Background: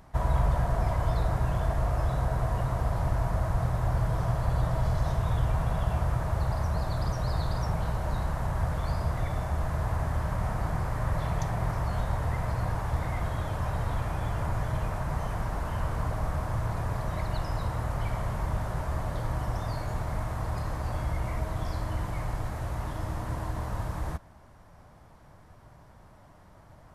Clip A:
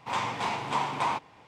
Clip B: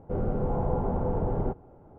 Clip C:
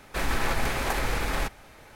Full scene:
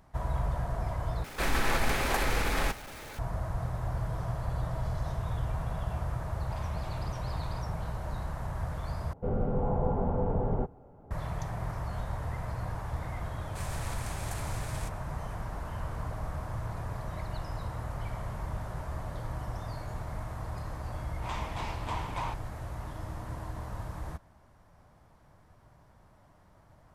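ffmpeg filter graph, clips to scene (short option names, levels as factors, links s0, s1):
-filter_complex "[3:a]asplit=2[s0][s1];[1:a]asplit=2[s2][s3];[0:a]volume=0.501[s4];[s0]aeval=exprs='val(0)+0.5*0.00944*sgn(val(0))':c=same[s5];[s2]acompressor=threshold=0.0355:ratio=6:attack=3.2:release=140:knee=1:detection=peak[s6];[2:a]bandreject=f=340:w=5.4[s7];[s1]equalizer=f=8500:w=0.73:g=14.5[s8];[s4]asplit=3[s9][s10][s11];[s9]atrim=end=1.244[s12];[s5]atrim=end=1.95,asetpts=PTS-STARTPTS,volume=0.841[s13];[s10]atrim=start=3.186:end=9.134[s14];[s7]atrim=end=1.98,asetpts=PTS-STARTPTS,volume=0.891[s15];[s11]atrim=start=11.106[s16];[s6]atrim=end=1.47,asetpts=PTS-STARTPTS,volume=0.178,afade=t=in:d=0.004:c=hsin,afade=t=out:st=1.466:d=0.004:c=hsin,adelay=6430[s17];[s8]atrim=end=1.95,asetpts=PTS-STARTPTS,volume=0.133,afade=t=in:d=0.004:c=hsin,afade=t=out:st=1.946:d=0.004:c=hsin,adelay=13410[s18];[s3]atrim=end=1.47,asetpts=PTS-STARTPTS,volume=0.376,afade=t=in:d=0.004:c=hsin,afade=t=out:st=1.466:d=0.004:c=hsin,adelay=933156S[s19];[s12][s13]acrossfade=d=0.004:c1=hsin:c2=hsin[s20];[s20][s14]acrossfade=d=0.004:c1=hsin:c2=hsin[s21];[s21][s15]acrossfade=d=0.004:c1=hsin:c2=hsin[s22];[s22][s16]acrossfade=d=0.004:c1=hsin:c2=hsin[s23];[s23][s17][s18][s19]amix=inputs=4:normalize=0"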